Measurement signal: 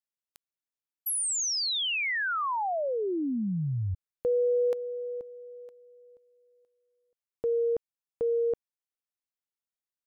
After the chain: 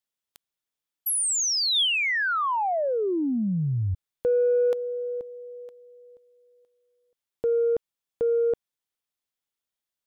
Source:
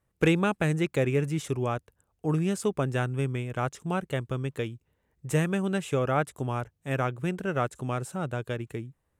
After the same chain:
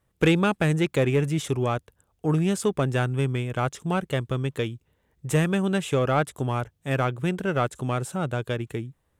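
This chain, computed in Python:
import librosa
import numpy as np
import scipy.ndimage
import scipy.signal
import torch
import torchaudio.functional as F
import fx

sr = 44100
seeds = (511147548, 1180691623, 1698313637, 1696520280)

p1 = fx.peak_eq(x, sr, hz=3400.0, db=4.5, octaves=0.29)
p2 = 10.0 ** (-23.0 / 20.0) * np.tanh(p1 / 10.0 ** (-23.0 / 20.0))
y = p1 + (p2 * 10.0 ** (-3.0 / 20.0))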